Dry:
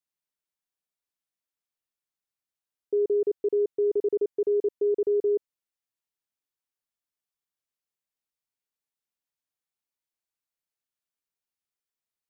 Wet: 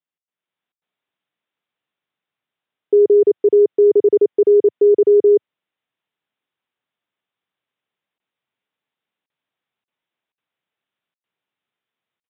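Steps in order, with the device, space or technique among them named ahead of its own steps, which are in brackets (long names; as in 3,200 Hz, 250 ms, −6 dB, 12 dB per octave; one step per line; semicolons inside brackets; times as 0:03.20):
call with lost packets (high-pass filter 110 Hz 24 dB per octave; downsampling to 8,000 Hz; automatic gain control gain up to 11 dB; dropped packets bursts)
level +1.5 dB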